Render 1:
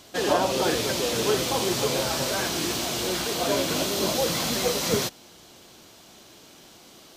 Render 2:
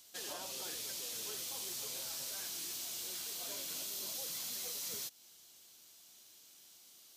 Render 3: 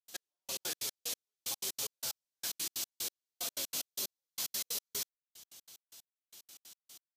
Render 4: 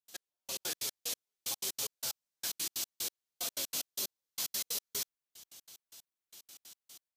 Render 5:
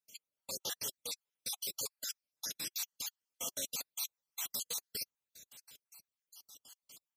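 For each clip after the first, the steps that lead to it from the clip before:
pre-emphasis filter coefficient 0.9; compression 2:1, threshold -37 dBFS, peak gain reduction 5.5 dB; trim -5.5 dB
trance gate ".x....x.x.x." 185 bpm -60 dB; peaking EQ 300 Hz -2 dB 2.2 oct; trim +6.5 dB
level rider gain up to 3.5 dB; trim -2.5 dB
random holes in the spectrogram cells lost 52%; comb of notches 360 Hz; trim +2 dB

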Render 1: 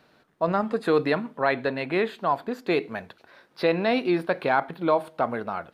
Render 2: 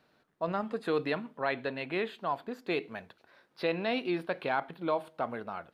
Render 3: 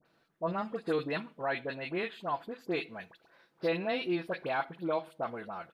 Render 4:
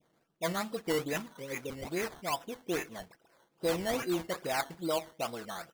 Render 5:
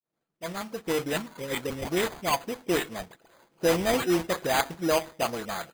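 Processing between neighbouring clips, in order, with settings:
dynamic bell 3 kHz, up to +6 dB, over -47 dBFS, Q 2.3; trim -8.5 dB
comb 6 ms, depth 31%; phase dispersion highs, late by 56 ms, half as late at 1.6 kHz; trim -2 dB
spectral replace 1.33–1.84 s, 550–1900 Hz both; level-controlled noise filter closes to 1.2 kHz, open at -28.5 dBFS; decimation with a swept rate 14×, swing 60% 2.4 Hz
fade-in on the opening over 1.53 s; careless resampling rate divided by 8×, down none, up hold; trim +7.5 dB

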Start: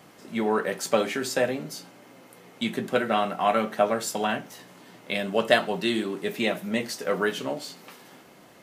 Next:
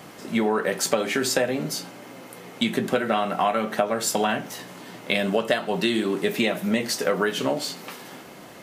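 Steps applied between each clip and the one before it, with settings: compression 10:1, threshold -27 dBFS, peak gain reduction 14 dB; trim +8.5 dB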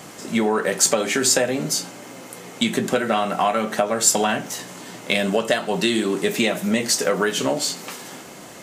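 in parallel at -8.5 dB: saturation -15.5 dBFS, distortion -16 dB; on the sum: peaking EQ 7.3 kHz +9 dB 0.87 oct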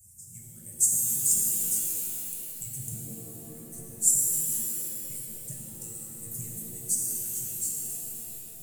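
harmonic-percussive separation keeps percussive; elliptic band-stop 130–8200 Hz, stop band 40 dB; pitch-shifted reverb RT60 2.6 s, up +7 st, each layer -2 dB, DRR -1 dB; trim -1 dB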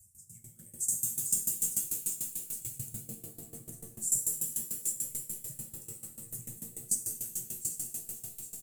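delay 810 ms -7.5 dB; sawtooth tremolo in dB decaying 6.8 Hz, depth 18 dB

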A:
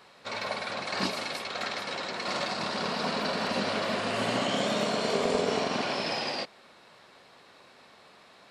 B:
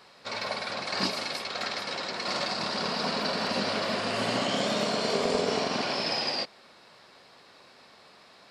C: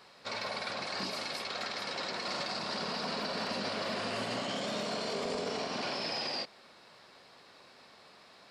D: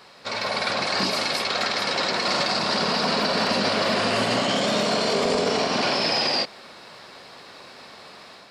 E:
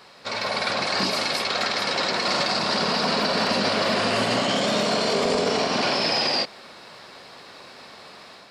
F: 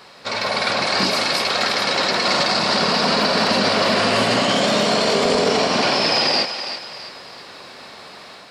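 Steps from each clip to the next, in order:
peaking EQ 4.9 kHz +6.5 dB 0.37 oct
peak limiter -24 dBFS, peak gain reduction 9 dB; trim -2.5 dB
level rider gain up to 5 dB; trim +8 dB
no audible change
thinning echo 331 ms, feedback 40%, high-pass 580 Hz, level -9 dB; trim +4.5 dB

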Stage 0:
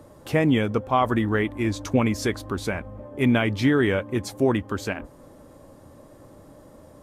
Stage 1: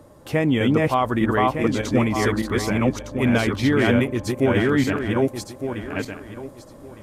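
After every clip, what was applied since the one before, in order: backward echo that repeats 605 ms, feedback 42%, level 0 dB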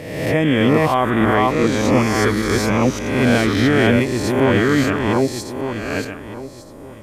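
reverse spectral sustain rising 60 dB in 1.12 s; trim +1.5 dB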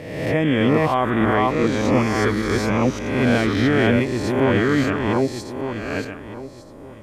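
treble shelf 7.1 kHz -10 dB; trim -2.5 dB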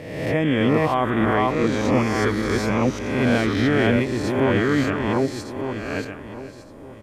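delay 502 ms -17 dB; trim -1.5 dB

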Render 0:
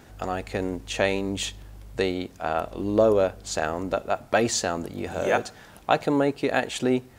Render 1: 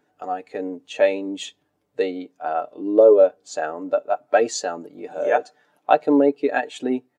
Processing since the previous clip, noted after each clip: high-pass 260 Hz 12 dB/octave; comb 6.8 ms, depth 48%; spectral contrast expander 1.5:1; trim +2 dB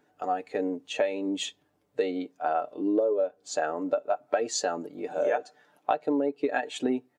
compression 16:1, threshold -22 dBFS, peak gain reduction 15 dB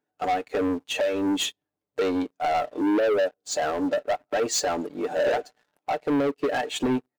peak limiter -18 dBFS, peak gain reduction 7.5 dB; waveshaping leveller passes 3; upward expansion 1.5:1, over -40 dBFS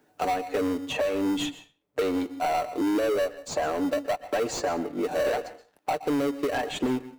reverberation RT60 0.35 s, pre-delay 115 ms, DRR 16 dB; in parallel at -11.5 dB: sample-and-hold 26×; on the sum: three bands compressed up and down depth 70%; trim -3.5 dB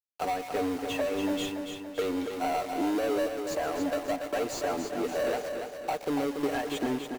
small samples zeroed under -36 dBFS; on a send: feedback delay 285 ms, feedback 53%, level -6.5 dB; on the sum: trim -4 dB

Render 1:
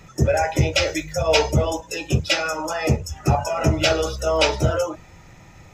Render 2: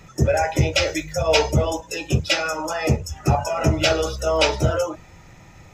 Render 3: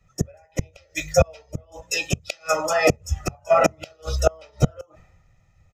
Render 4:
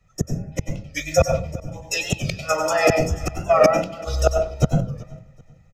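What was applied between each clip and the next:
no audible change
comb 1.6 ms, depth 49%; inverted gate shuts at -10 dBFS, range -31 dB; three bands expanded up and down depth 100%; trim +2.5 dB
feedback delay 381 ms, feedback 31%, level -21.5 dB; on a send at -5 dB: reverberation RT60 0.40 s, pre-delay 90 ms; on the sum: warped record 45 rpm, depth 100 cents

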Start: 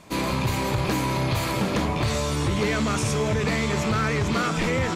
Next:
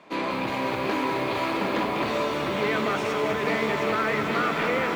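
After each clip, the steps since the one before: three-band isolator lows -22 dB, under 230 Hz, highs -20 dB, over 3.8 kHz; on a send: echo whose repeats swap between lows and highs 273 ms, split 1.4 kHz, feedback 81%, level -9 dB; on the sum: bit-crushed delay 197 ms, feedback 80%, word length 8-bit, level -7.5 dB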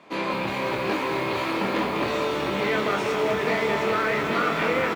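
doubling 25 ms -4.5 dB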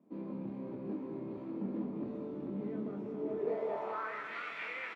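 peaking EQ 2.1 kHz -6.5 dB 2.9 oct; band-pass sweep 230 Hz -> 2.2 kHz, 3.14–4.42 s; trim -4.5 dB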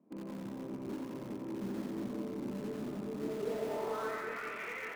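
low-pass 2.6 kHz; in parallel at -11.5 dB: integer overflow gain 35.5 dB; on the sum: two-band feedback delay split 620 Hz, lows 402 ms, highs 88 ms, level -3.5 dB; trim -3 dB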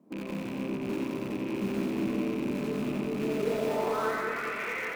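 rattle on loud lows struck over -46 dBFS, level -41 dBFS; reverberation RT60 0.40 s, pre-delay 71 ms, DRR 6 dB; trim +7 dB

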